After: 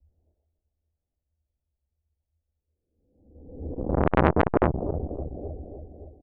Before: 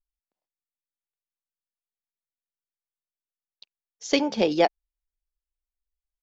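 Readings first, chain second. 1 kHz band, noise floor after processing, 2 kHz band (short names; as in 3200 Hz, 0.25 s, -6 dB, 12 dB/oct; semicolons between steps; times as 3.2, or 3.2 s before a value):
+3.0 dB, -85 dBFS, +1.0 dB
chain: spectral swells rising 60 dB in 1.01 s; steep low-pass 860 Hz 48 dB/oct; echo 73 ms -23 dB; in parallel at +1 dB: compressor, threshold -26 dBFS, peak gain reduction 12.5 dB; on the sum: LPC vocoder at 8 kHz whisper; tilt -2.5 dB/oct; on a send: feedback echo 0.284 s, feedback 55%, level -14 dB; on the sum: frequency shift -80 Hz; bell 86 Hz +14 dB 0.37 oct; core saturation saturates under 1200 Hz; gain -1 dB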